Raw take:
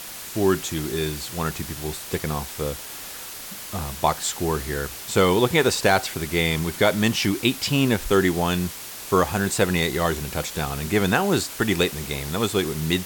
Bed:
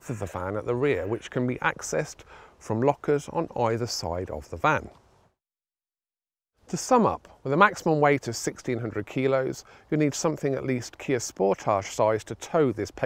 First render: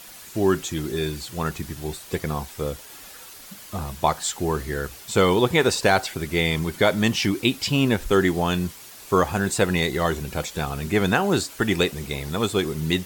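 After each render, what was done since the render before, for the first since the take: denoiser 8 dB, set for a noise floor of -37 dBFS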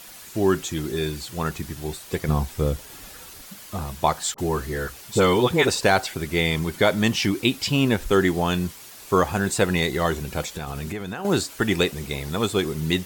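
2.28–3.42 low shelf 250 Hz +10.5 dB; 4.34–5.68 dispersion highs, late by 43 ms, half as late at 1000 Hz; 10.41–11.25 compressor 16:1, threshold -26 dBFS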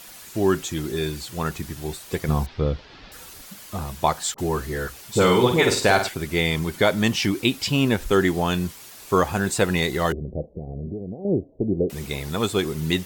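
2.46–3.12 steep low-pass 4800 Hz; 5.13–6.09 flutter echo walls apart 8.4 m, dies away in 0.43 s; 10.12–11.9 steep low-pass 640 Hz 48 dB/oct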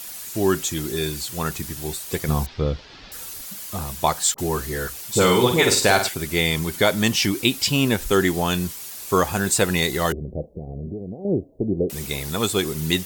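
high shelf 4800 Hz +10 dB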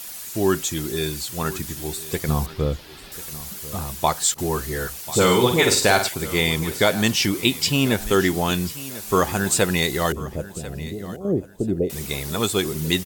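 feedback echo 1.041 s, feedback 29%, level -17 dB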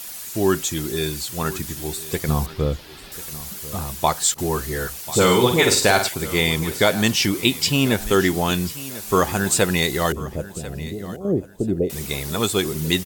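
gain +1 dB; limiter -3 dBFS, peak gain reduction 1.5 dB

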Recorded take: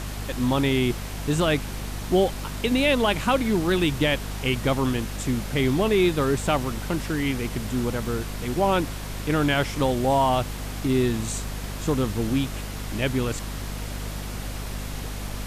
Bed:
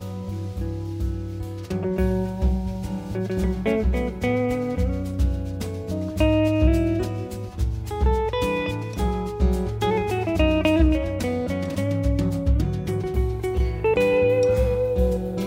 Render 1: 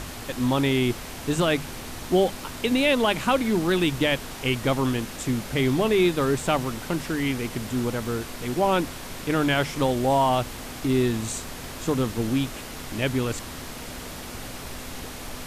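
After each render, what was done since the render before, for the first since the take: notches 50/100/150/200 Hz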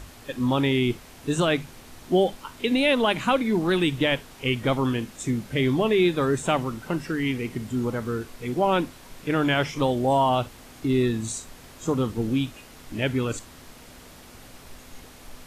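noise print and reduce 10 dB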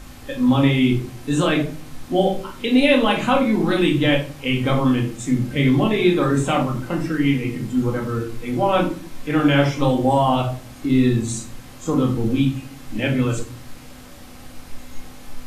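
shoebox room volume 360 m³, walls furnished, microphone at 2.1 m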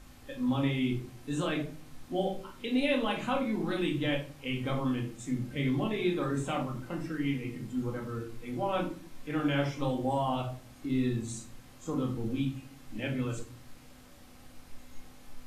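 gain -13 dB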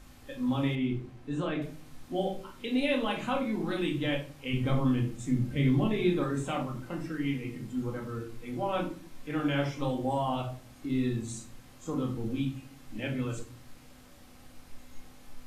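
0.75–1.62 LPF 1900 Hz 6 dB/oct; 4.53–6.24 low shelf 230 Hz +8.5 dB

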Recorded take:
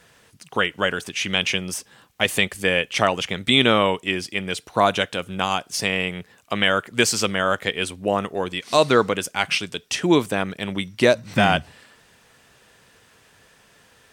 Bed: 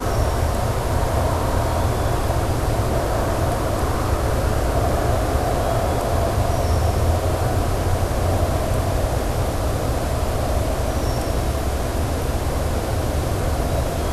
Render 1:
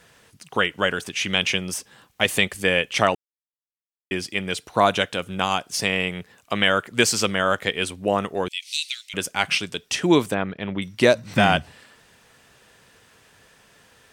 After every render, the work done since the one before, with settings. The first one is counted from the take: 3.15–4.11 mute; 8.48–9.14 steep high-pass 2300 Hz 48 dB/oct; 10.34–10.82 air absorption 300 m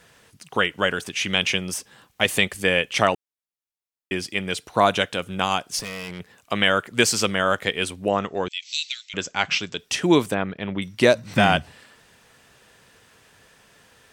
5.79–6.2 tube stage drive 29 dB, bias 0.55; 8.08–9.79 Chebyshev low-pass 7800 Hz, order 10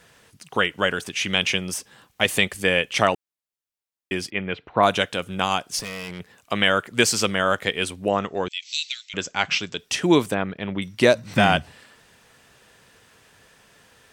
4.3–4.83 LPF 2700 Hz 24 dB/oct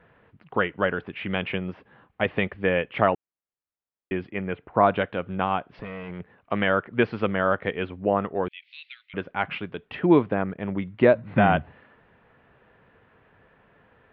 Gaussian blur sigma 4.1 samples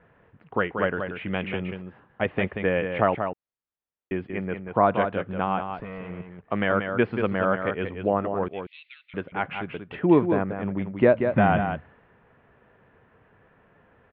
air absorption 270 m; echo 0.184 s -7 dB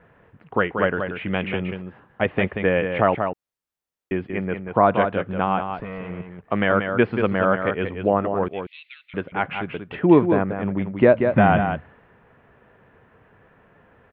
gain +4 dB; limiter -3 dBFS, peak gain reduction 2 dB

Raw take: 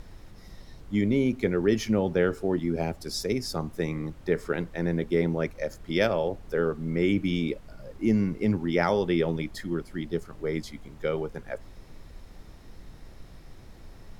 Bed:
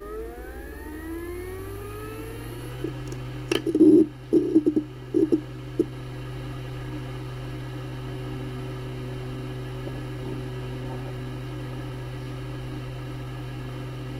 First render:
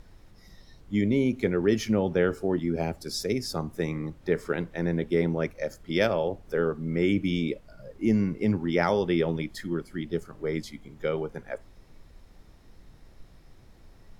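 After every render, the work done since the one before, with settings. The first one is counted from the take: noise print and reduce 6 dB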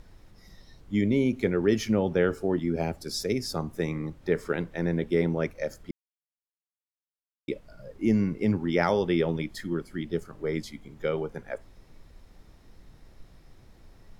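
5.91–7.48 mute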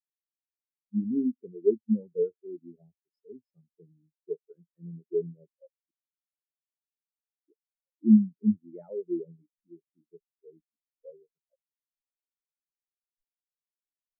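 spectral expander 4:1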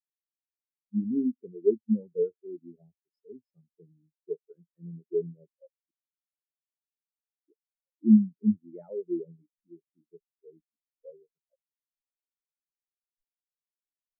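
nothing audible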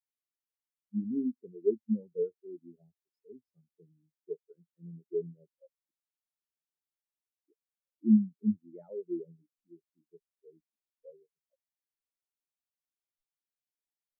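gain -4.5 dB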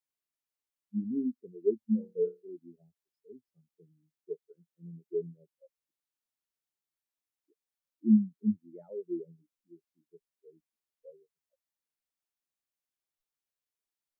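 1.79–2.49 flutter echo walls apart 4.7 m, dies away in 0.23 s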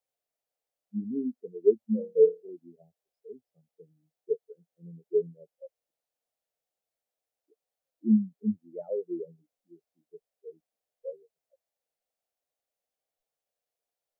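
band shelf 590 Hz +13.5 dB 1 oct

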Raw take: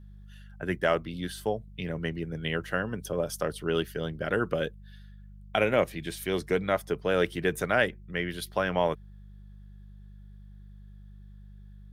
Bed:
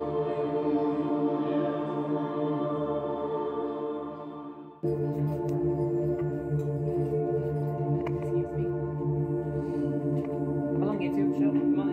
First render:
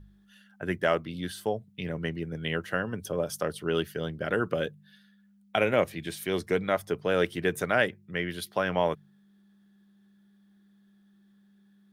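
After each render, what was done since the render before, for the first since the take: de-hum 50 Hz, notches 3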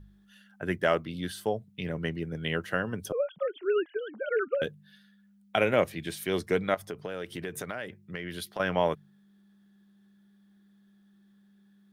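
3.12–4.62 sine-wave speech; 6.74–8.6 compressor, threshold -32 dBFS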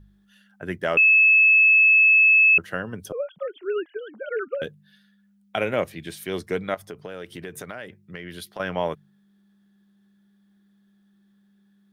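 0.97–2.58 bleep 2600 Hz -12 dBFS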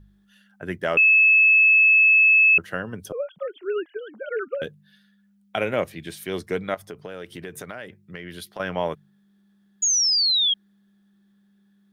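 9.82–10.54 painted sound fall 3200–6900 Hz -20 dBFS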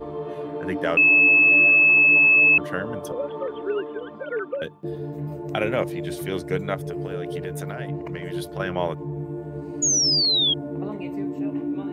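add bed -2.5 dB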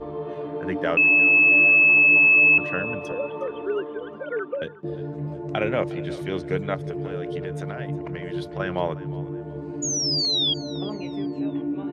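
air absorption 93 m; feedback echo 0.36 s, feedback 35%, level -18.5 dB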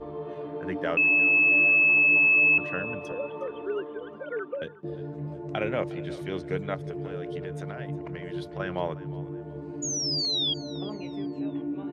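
gain -4.5 dB

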